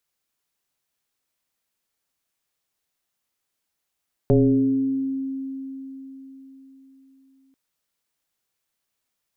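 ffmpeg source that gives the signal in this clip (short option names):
-f lavfi -i "aevalsrc='0.251*pow(10,-3*t/4.29)*sin(2*PI*268*t+1.8*pow(10,-3*t/1.47)*sin(2*PI*0.54*268*t))':d=3.24:s=44100"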